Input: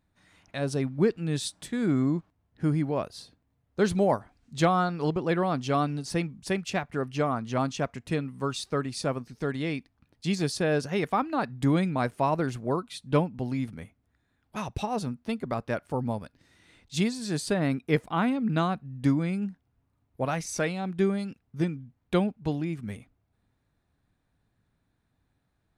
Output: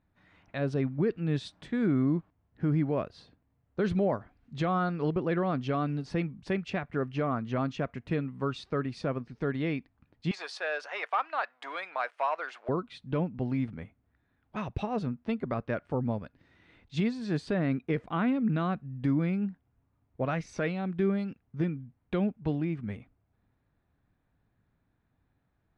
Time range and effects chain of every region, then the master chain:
0:10.31–0:12.69: leveller curve on the samples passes 1 + high-pass filter 710 Hz 24 dB per octave
whole clip: low-pass filter 2,600 Hz 12 dB per octave; dynamic equaliser 860 Hz, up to −6 dB, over −43 dBFS, Q 2.5; brickwall limiter −18.5 dBFS

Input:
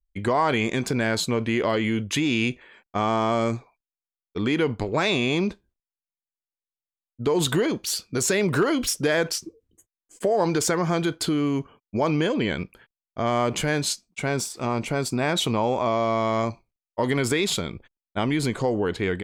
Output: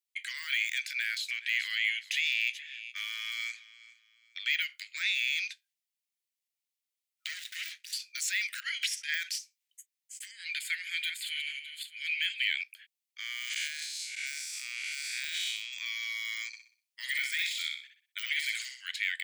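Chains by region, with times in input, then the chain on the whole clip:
0:00.78–0:04.62: parametric band 8,000 Hz −7.5 dB 1.2 octaves + repeating echo 421 ms, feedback 29%, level −21 dB
0:07.27–0:07.93: running median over 41 samples + high-shelf EQ 12,000 Hz −3.5 dB
0:08.60–0:09.14: low-pass filter 11,000 Hz + compressor whose output falls as the input rises −30 dBFS + dynamic equaliser 1,800 Hz, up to +8 dB, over −47 dBFS, Q 1.1
0:10.31–0:12.61: feedback delay that plays each chunk backwards 305 ms, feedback 41%, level −10 dB + phaser with its sweep stopped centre 2,500 Hz, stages 4
0:13.20–0:15.73: spectrum smeared in time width 230 ms + high-shelf EQ 11,000 Hz −6.5 dB
0:16.47–0:18.92: de-essing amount 90% + repeating echo 62 ms, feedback 37%, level −5 dB
whole clip: de-essing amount 100%; Butterworth high-pass 1,900 Hz 48 dB per octave; level +6 dB

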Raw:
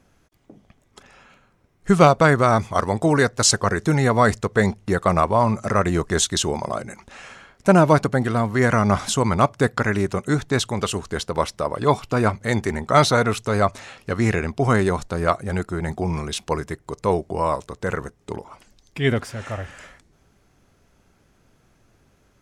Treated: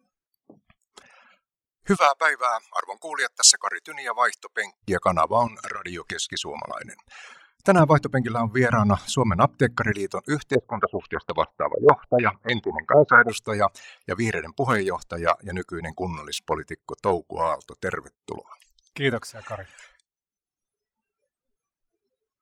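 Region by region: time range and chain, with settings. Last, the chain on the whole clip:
0:01.96–0:04.83: high-pass filter 880 Hz + multiband upward and downward expander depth 40%
0:05.47–0:06.87: parametric band 2,700 Hz +11.5 dB 2.4 octaves + downward compressor 10 to 1, threshold −24 dBFS
0:07.79–0:09.92: bass and treble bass +9 dB, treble −6 dB + mains-hum notches 60/120/180/240/300 Hz
0:10.55–0:13.29: high-frequency loss of the air 70 metres + low-pass on a step sequencer 6.7 Hz 490–3,400 Hz
0:14.51–0:17.58: phase distortion by the signal itself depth 0.067 ms + high-shelf EQ 7,800 Hz −4 dB
whole clip: reverb reduction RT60 1.4 s; low-shelf EQ 250 Hz −8.5 dB; noise reduction from a noise print of the clip's start 29 dB

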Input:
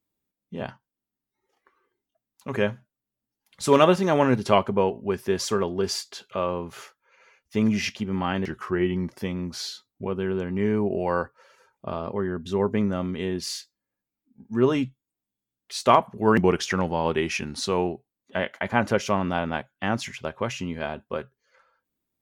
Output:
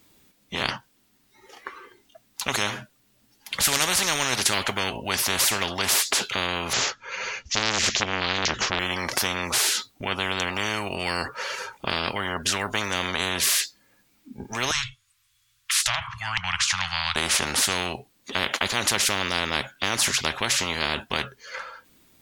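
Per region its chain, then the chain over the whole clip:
0:06.73–0:08.79: Butterworth low-pass 7,000 Hz 72 dB per octave + bass and treble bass +10 dB, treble +4 dB + saturating transformer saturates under 1,200 Hz
0:14.71–0:17.16: treble cut that deepens with the level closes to 2,500 Hz, closed at −16 dBFS + Chebyshev band-stop filter 110–1,100 Hz, order 4
whole clip: parametric band 3,600 Hz +6.5 dB 2.9 octaves; every bin compressed towards the loudest bin 10 to 1

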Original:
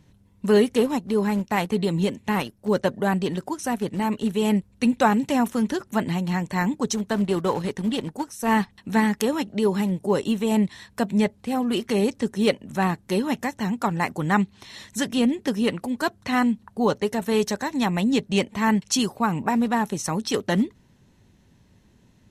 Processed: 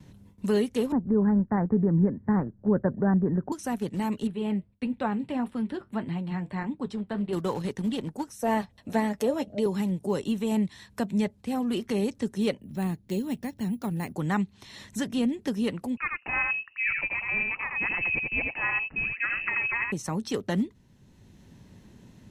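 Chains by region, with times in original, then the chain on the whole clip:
0:00.92–0:03.52: Butterworth low-pass 1,800 Hz 72 dB per octave + low-shelf EQ 370 Hz +10 dB
0:04.27–0:07.33: moving average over 7 samples + flanger 1.6 Hz, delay 6.3 ms, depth 4.8 ms, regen −62%
0:08.41–0:09.66: parametric band 600 Hz +15 dB 0.55 octaves + notch comb filter 190 Hz
0:12.60–0:14.16: parametric band 1,200 Hz −11.5 dB 2 octaves + bad sample-rate conversion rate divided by 4×, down filtered, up hold
0:15.97–0:19.92: single-tap delay 84 ms −3.5 dB + voice inversion scrambler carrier 2,800 Hz
whole clip: noise gate with hold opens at −50 dBFS; low-shelf EQ 350 Hz +5.5 dB; multiband upward and downward compressor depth 40%; level −8.5 dB

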